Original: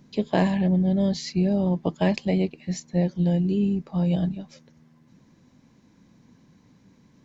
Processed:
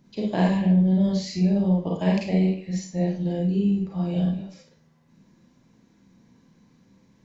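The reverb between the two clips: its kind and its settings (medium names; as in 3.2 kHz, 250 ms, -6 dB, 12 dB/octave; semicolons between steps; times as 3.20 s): Schroeder reverb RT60 0.42 s, combs from 33 ms, DRR -3 dB; trim -6 dB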